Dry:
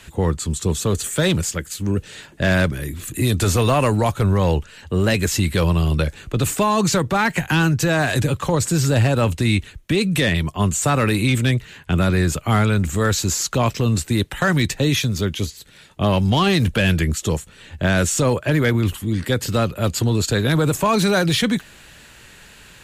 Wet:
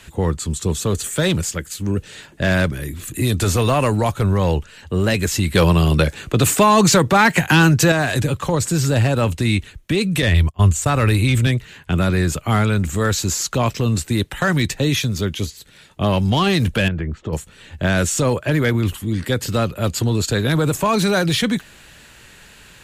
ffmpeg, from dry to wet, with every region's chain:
-filter_complex "[0:a]asettb=1/sr,asplit=3[s0][s1][s2];[s0]atrim=end=5.554[s3];[s1]atrim=start=5.55:end=7.92,asetpts=PTS-STARTPTS,afade=t=in:d=0.004:c=qsin,afade=t=out:st=2.366:d=0.004:c=qsin,highpass=f=110:p=1,acontrast=61[s4];[s2]atrim=start=7.916[s5];[s3][s4]acrossfade=d=0.004:c1=hsin:c2=qsin[s6];[s6][s5]acrossfade=d=0.004:c1=qsin:c2=hsin,asettb=1/sr,asplit=3[s7][s8][s9];[s7]atrim=end=10.224[s10];[s8]atrim=start=10.22:end=11.47,asetpts=PTS-STARTPTS,afade=t=in:d=0.004:c=qsin,afade=t=out:st=1.246:d=0.004:c=qsin,agate=range=0.1:threshold=0.0631:ratio=16:release=100:detection=peak,lowshelf=f=120:t=q:w=1.5:g=8[s11];[s9]atrim=start=11.466[s12];[s10][s11]acrossfade=d=0.004:c1=hsin:c2=qsin[s13];[s13][s12]acrossfade=d=0.004:c1=qsin:c2=hsin,asettb=1/sr,asplit=3[s14][s15][s16];[s14]atrim=end=16.884[s17];[s15]atrim=start=16.88:end=17.33,asetpts=PTS-STARTPTS,afade=t=in:d=0.004:c=qsin,afade=t=out:st=0.446:d=0.004:c=qsin,lowpass=1500,acompressor=threshold=0.1:ratio=4:attack=3.2:release=140:knee=1:detection=peak[s18];[s16]atrim=start=17.326[s19];[s17][s18]acrossfade=d=0.004:c1=hsin:c2=qsin[s20];[s20][s19]acrossfade=d=0.004:c1=qsin:c2=hsin"

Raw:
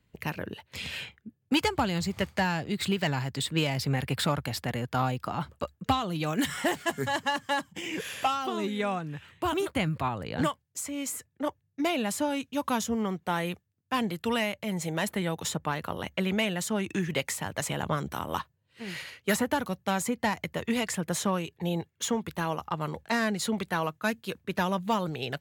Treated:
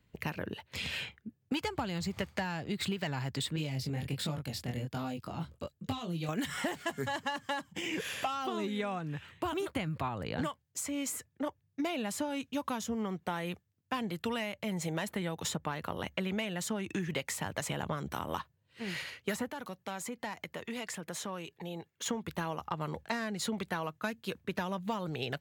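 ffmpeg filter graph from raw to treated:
-filter_complex "[0:a]asettb=1/sr,asplit=3[s0][s1][s2];[s0]atrim=end=3.564[s3];[s1]atrim=start=3.56:end=6.29,asetpts=PTS-STARTPTS,afade=t=in:d=0.004:c=qsin,afade=t=out:st=2.726:d=0.004:c=qsin,flanger=delay=19.5:depth=5.3:speed=1.3,equalizer=f=1200:t=o:w=2.1:g=-9.5[s4];[s2]atrim=start=6.286[s5];[s3][s4]acrossfade=d=0.004:c1=hsin:c2=qsin[s6];[s6][s5]acrossfade=d=0.004:c1=qsin:c2=hsin,asettb=1/sr,asplit=3[s7][s8][s9];[s7]atrim=end=19.494[s10];[s8]atrim=start=19.49:end=22.06,asetpts=PTS-STARTPTS,afade=t=in:d=0.004:c=qsin,afade=t=out:st=2.566:d=0.004:c=qsin,acompressor=threshold=0.01:ratio=2:attack=3.2:release=140:knee=1:detection=peak,highpass=f=250:p=1[s11];[s9]atrim=start=22.056[s12];[s10][s11]acrossfade=d=0.004:c1=hsin:c2=qsin[s13];[s13][s12]acrossfade=d=0.004:c1=qsin:c2=hsin,equalizer=f=11000:t=o:w=1:g=-3,acompressor=threshold=0.0282:ratio=6"

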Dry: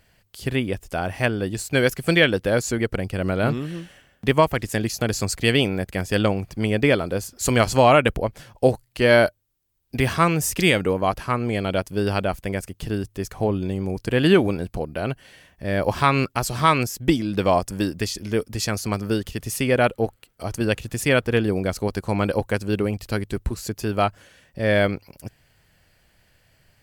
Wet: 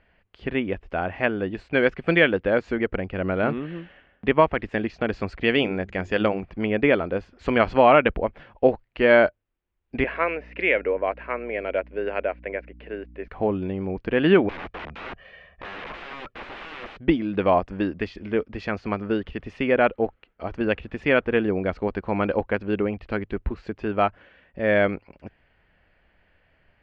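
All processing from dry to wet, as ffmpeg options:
-filter_complex "[0:a]asettb=1/sr,asplit=3[s0][s1][s2];[s0]atrim=end=5.544[s3];[s1]atrim=start=5.54:end=6.43,asetpts=PTS-STARTPTS,afade=t=in:d=0.004:c=qsin,afade=t=out:st=0.886:d=0.004:c=qsin,lowpass=f=7000:t=q:w=12,bandreject=f=50:t=h:w=6,bandreject=f=100:t=h:w=6,bandreject=f=150:t=h:w=6,bandreject=f=200:t=h:w=6,bandreject=f=250:t=h:w=6,bandreject=f=300:t=h:w=6,bandreject=f=350:t=h:w=6,bandreject=f=400:t=h:w=6[s4];[s2]atrim=start=6.426[s5];[s3][s4]acrossfade=d=0.004:c1=hsin:c2=qsin[s6];[s6][s5]acrossfade=d=0.004:c1=qsin:c2=hsin,asettb=1/sr,asplit=3[s7][s8][s9];[s7]atrim=end=10.044[s10];[s8]atrim=start=10.04:end=13.28,asetpts=PTS-STARTPTS,afade=t=in:d=0.004:c=qsin,afade=t=out:st=3.236:d=0.004:c=qsin,highpass=f=320:w=0.5412,highpass=f=320:w=1.3066,equalizer=f=330:t=q:w=4:g=-7,equalizer=f=560:t=q:w=4:g=3,equalizer=f=810:t=q:w=4:g=-8,equalizer=f=1200:t=q:w=4:g=-9,equalizer=f=2200:t=q:w=4:g=3,equalizer=f=3300:t=q:w=4:g=-9,lowpass=f=3500:w=0.5412,lowpass=f=3500:w=1.3066,aeval=exprs='val(0)+0.00708*(sin(2*PI*60*n/s)+sin(2*PI*2*60*n/s)/2+sin(2*PI*3*60*n/s)/3+sin(2*PI*4*60*n/s)/4+sin(2*PI*5*60*n/s)/5)':c=same[s11];[s9]atrim=start=13.276[s12];[s10][s11]acrossfade=d=0.004:c1=hsin:c2=qsin[s13];[s13][s12]acrossfade=d=0.004:c1=qsin:c2=hsin,asettb=1/sr,asplit=3[s14][s15][s16];[s14]atrim=end=14.494[s17];[s15]atrim=start=14.49:end=16.99,asetpts=PTS-STARTPTS,afade=t=in:d=0.004:c=qsin,afade=t=out:st=2.496:d=0.004:c=qsin,aecho=1:1:1.7:0.89,atrim=end_sample=110250,acompressor=threshold=0.1:ratio=6:attack=3.2:release=140:knee=1:detection=peak,aeval=exprs='(mod(26.6*val(0)+1,2)-1)/26.6':c=same[s18];[s16]atrim=start=16.986[s19];[s17][s18]acrossfade=d=0.004:c1=hsin:c2=qsin[s20];[s20][s19]acrossfade=d=0.004:c1=qsin:c2=hsin,lowpass=f=2700:w=0.5412,lowpass=f=2700:w=1.3066,equalizer=f=120:t=o:w=0.61:g=-13"

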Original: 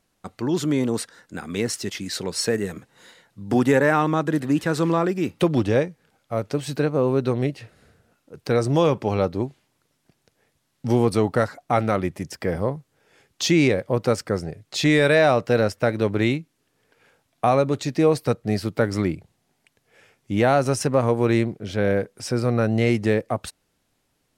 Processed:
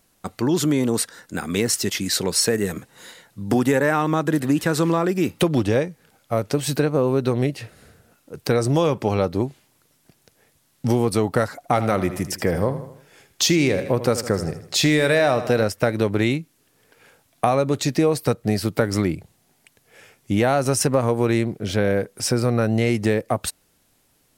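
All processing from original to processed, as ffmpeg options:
-filter_complex "[0:a]asettb=1/sr,asplit=3[s0][s1][s2];[s0]atrim=end=11.564[s3];[s1]atrim=start=11.56:end=15.64,asetpts=PTS-STARTPTS,afade=t=in:d=0.004:c=qsin,afade=t=out:st=4.076:d=0.004:c=qsin,asoftclip=type=hard:threshold=0.422,aecho=1:1:79|158|237|316:0.211|0.0972|0.0447|0.0206,atrim=end_sample=179928[s4];[s2]atrim=start=15.636[s5];[s3][s4]acrossfade=d=0.004:c1=hsin:c2=qsin[s6];[s6][s5]acrossfade=d=0.004:c1=qsin:c2=hsin,highshelf=f=9200:g=11.5,acompressor=threshold=0.0794:ratio=3,volume=1.88"

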